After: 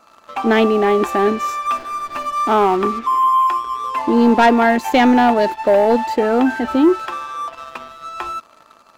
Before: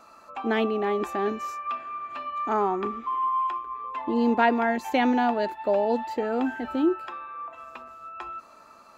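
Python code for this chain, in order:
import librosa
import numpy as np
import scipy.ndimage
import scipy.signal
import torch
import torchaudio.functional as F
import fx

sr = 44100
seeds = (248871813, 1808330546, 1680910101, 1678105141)

y = fx.leveller(x, sr, passes=2)
y = fx.backlash(y, sr, play_db=-29.0, at=(1.66, 2.83))
y = y * 10.0 ** (4.0 / 20.0)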